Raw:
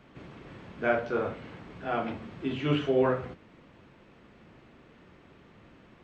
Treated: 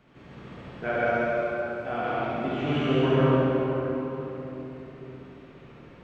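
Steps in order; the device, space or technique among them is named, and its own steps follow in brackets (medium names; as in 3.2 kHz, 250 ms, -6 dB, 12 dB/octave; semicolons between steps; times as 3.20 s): 1.06–1.85 s: differentiator; tunnel (flutter echo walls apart 11.9 m, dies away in 1 s; reverberation RT60 3.7 s, pre-delay 84 ms, DRR -6 dB); trim -4 dB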